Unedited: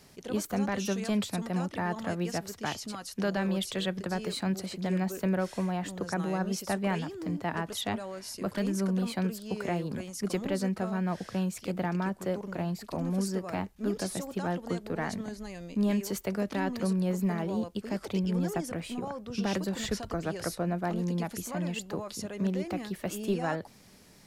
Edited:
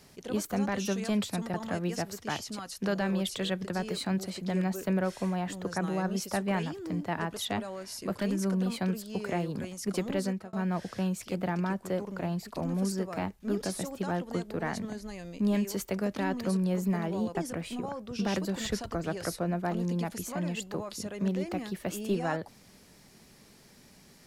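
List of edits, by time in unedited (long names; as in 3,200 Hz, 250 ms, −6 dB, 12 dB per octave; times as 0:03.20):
0:01.54–0:01.90: remove
0:10.61–0:10.89: fade out
0:17.71–0:18.54: remove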